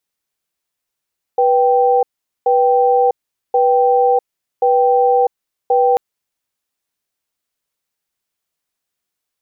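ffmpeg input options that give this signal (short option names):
-f lavfi -i "aevalsrc='0.237*(sin(2*PI*490*t)+sin(2*PI*782*t))*clip(min(mod(t,1.08),0.65-mod(t,1.08))/0.005,0,1)':d=4.59:s=44100"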